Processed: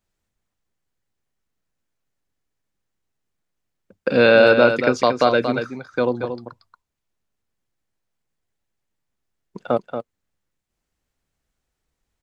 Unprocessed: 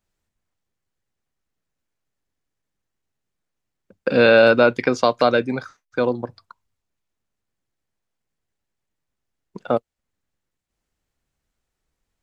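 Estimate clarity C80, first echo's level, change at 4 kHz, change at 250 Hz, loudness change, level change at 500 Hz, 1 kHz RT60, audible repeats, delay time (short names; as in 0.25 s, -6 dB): none, -8.0 dB, +0.5 dB, +0.5 dB, 0.0 dB, +0.5 dB, none, 1, 0.231 s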